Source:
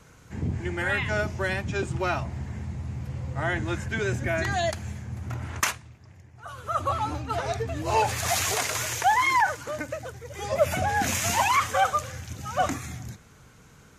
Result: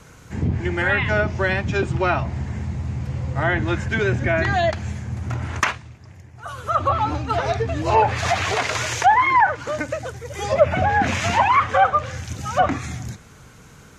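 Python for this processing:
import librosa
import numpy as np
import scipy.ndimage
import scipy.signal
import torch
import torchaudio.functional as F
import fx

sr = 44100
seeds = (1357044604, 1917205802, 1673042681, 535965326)

y = fx.env_lowpass_down(x, sr, base_hz=2000.0, full_db=-20.0)
y = F.gain(torch.from_numpy(y), 7.0).numpy()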